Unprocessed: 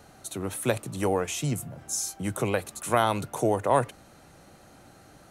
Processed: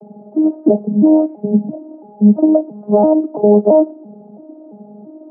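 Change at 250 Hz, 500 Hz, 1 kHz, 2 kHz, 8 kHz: +21.0 dB, +14.0 dB, +3.0 dB, below −25 dB, below −40 dB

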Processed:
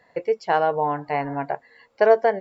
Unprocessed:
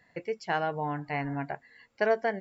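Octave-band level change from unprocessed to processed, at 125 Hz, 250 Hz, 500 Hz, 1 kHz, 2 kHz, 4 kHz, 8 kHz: +1.0 dB, +3.0 dB, +10.5 dB, +9.5 dB, +4.0 dB, +3.5 dB, can't be measured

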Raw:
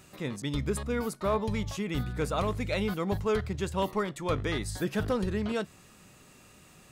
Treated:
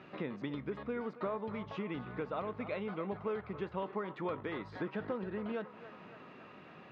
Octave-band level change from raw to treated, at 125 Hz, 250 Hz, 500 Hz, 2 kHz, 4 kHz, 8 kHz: −13.0 dB, −8.0 dB, −7.0 dB, −8.0 dB, −15.0 dB, below −35 dB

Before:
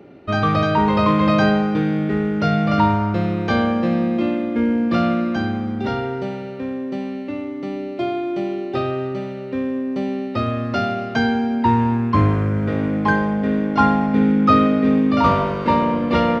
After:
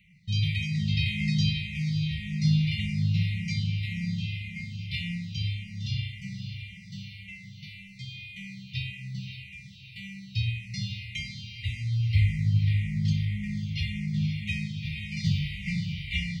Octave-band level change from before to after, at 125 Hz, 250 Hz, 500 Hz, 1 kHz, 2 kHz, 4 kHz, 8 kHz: −3.0 dB, −16.0 dB, below −40 dB, below −40 dB, −9.0 dB, −1.0 dB, can't be measured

